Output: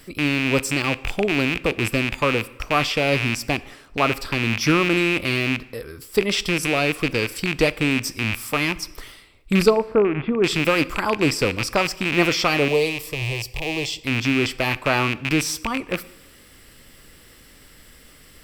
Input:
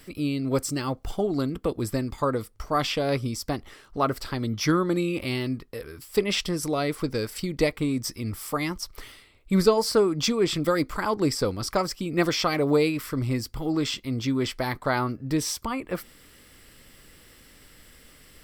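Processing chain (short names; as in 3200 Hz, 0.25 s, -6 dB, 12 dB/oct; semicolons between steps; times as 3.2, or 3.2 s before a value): rattling part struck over -34 dBFS, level -15 dBFS; 9.7–10.44 Gaussian blur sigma 4.6 samples; 12.68–14 fixed phaser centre 590 Hz, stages 4; plate-style reverb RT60 0.98 s, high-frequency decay 0.8×, DRR 16.5 dB; gain +3.5 dB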